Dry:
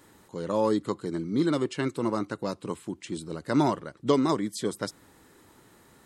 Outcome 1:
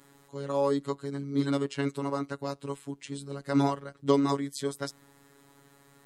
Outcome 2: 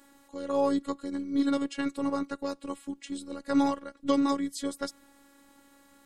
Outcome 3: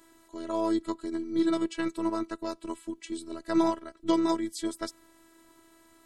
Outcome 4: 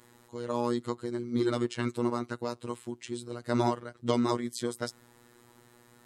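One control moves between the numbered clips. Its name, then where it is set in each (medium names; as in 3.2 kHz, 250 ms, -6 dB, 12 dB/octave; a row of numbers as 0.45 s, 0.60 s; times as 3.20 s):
robot voice, frequency: 140 Hz, 280 Hz, 330 Hz, 120 Hz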